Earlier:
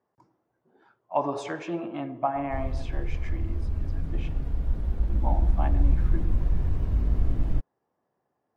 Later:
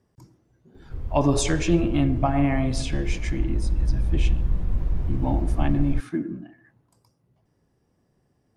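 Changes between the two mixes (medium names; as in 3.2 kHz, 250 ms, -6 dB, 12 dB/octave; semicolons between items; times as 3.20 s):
speech: remove band-pass filter 890 Hz, Q 1.3; background: entry -1.60 s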